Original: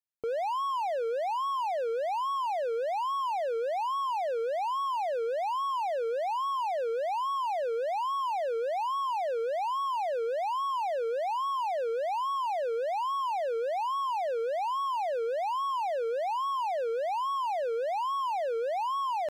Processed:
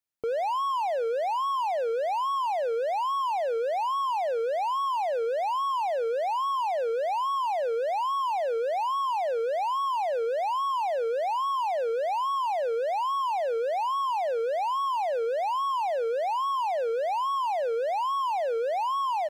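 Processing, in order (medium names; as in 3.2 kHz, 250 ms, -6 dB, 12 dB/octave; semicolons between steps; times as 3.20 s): feedback delay 79 ms, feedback 29%, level -22.5 dB; trim +3 dB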